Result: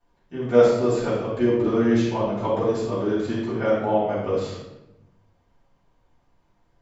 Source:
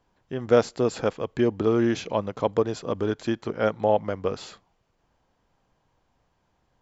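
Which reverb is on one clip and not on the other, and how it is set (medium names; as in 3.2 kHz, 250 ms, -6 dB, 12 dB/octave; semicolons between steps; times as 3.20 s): simulated room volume 350 m³, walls mixed, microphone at 7.5 m; trim -14.5 dB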